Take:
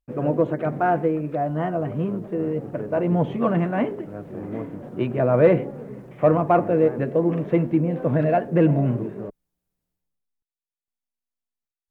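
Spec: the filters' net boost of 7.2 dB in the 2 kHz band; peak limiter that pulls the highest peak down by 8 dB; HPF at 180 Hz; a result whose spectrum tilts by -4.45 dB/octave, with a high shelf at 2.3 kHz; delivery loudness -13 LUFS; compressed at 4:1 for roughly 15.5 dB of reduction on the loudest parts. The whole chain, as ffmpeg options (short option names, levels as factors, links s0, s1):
-af "highpass=180,equalizer=f=2000:t=o:g=7,highshelf=f=2300:g=5,acompressor=threshold=0.0316:ratio=4,volume=12.6,alimiter=limit=0.75:level=0:latency=1"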